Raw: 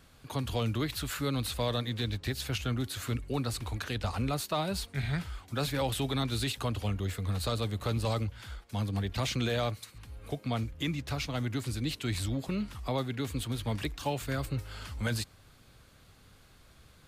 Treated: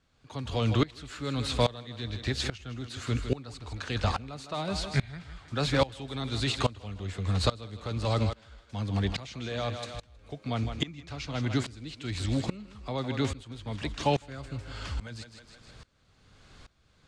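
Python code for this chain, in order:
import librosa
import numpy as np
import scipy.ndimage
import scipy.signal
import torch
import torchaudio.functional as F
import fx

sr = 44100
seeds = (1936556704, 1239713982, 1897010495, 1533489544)

y = scipy.signal.sosfilt(scipy.signal.butter(4, 7500.0, 'lowpass', fs=sr, output='sos'), x)
y = fx.echo_thinned(y, sr, ms=158, feedback_pct=46, hz=210.0, wet_db=-11.0)
y = fx.tremolo_decay(y, sr, direction='swelling', hz=1.2, depth_db=22)
y = y * 10.0 ** (8.5 / 20.0)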